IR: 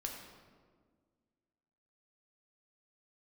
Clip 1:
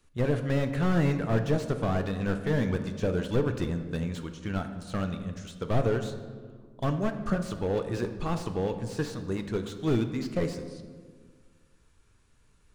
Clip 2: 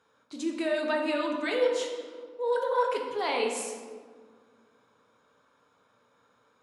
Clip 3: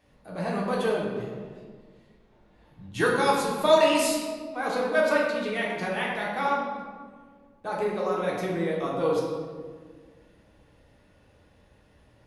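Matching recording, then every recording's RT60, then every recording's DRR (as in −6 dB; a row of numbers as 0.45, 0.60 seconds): 2; 1.7, 1.7, 1.7 seconds; 7.0, 0.5, −4.5 decibels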